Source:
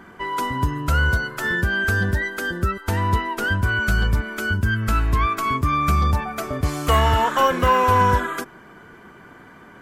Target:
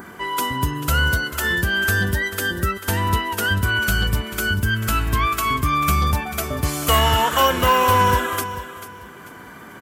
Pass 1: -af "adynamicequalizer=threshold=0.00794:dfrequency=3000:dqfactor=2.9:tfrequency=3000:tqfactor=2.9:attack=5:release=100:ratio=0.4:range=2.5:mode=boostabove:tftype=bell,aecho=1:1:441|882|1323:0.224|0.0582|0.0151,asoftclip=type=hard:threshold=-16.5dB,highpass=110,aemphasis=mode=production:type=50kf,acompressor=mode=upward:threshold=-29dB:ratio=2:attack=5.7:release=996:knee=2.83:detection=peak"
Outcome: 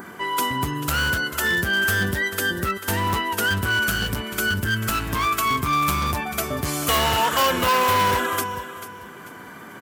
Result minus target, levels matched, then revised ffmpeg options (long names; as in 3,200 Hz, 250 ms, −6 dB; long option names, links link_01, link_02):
hard clipping: distortion +22 dB; 125 Hz band −4.0 dB
-af "adynamicequalizer=threshold=0.00794:dfrequency=3000:dqfactor=2.9:tfrequency=3000:tqfactor=2.9:attack=5:release=100:ratio=0.4:range=2.5:mode=boostabove:tftype=bell,aecho=1:1:441|882|1323:0.224|0.0582|0.0151,asoftclip=type=hard:threshold=-9.5dB,highpass=51,aemphasis=mode=production:type=50kf,acompressor=mode=upward:threshold=-29dB:ratio=2:attack=5.7:release=996:knee=2.83:detection=peak"